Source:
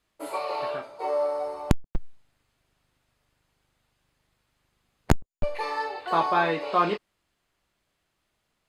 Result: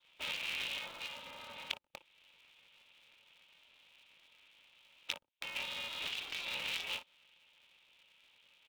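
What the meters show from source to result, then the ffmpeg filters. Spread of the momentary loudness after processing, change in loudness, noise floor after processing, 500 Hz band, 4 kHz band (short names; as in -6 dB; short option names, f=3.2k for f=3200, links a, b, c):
11 LU, -12.0 dB, -72 dBFS, -26.5 dB, +3.0 dB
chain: -filter_complex "[0:a]equalizer=f=380:t=o:w=1.9:g=-13.5,acrossover=split=110|1300[a][b][c];[a]acompressor=threshold=-30dB:ratio=4[d];[b]acompressor=threshold=-30dB:ratio=4[e];[c]acompressor=threshold=-42dB:ratio=4[f];[d][e][f]amix=inputs=3:normalize=0,adynamicequalizer=threshold=0.00112:dfrequency=2500:dqfactor=3.2:tfrequency=2500:tqfactor=3.2:attack=5:release=100:ratio=0.375:range=3:mode=cutabove:tftype=bell,aresample=8000,aresample=44100,asplit=2[g][h];[h]aecho=0:1:22|57:0.501|0.178[i];[g][i]amix=inputs=2:normalize=0,acompressor=threshold=-37dB:ratio=3,aresample=16000,volume=32dB,asoftclip=hard,volume=-32dB,aresample=44100,afftfilt=real='re*lt(hypot(re,im),0.0126)':imag='im*lt(hypot(re,im),0.0126)':win_size=1024:overlap=0.75,asplit=3[j][k][l];[j]bandpass=f=730:t=q:w=8,volume=0dB[m];[k]bandpass=f=1.09k:t=q:w=8,volume=-6dB[n];[l]bandpass=f=2.44k:t=q:w=8,volume=-9dB[o];[m][n][o]amix=inputs=3:normalize=0,aexciter=amount=7.9:drive=9.1:freq=2.6k,aeval=exprs='val(0)*sgn(sin(2*PI*170*n/s))':c=same,volume=13dB"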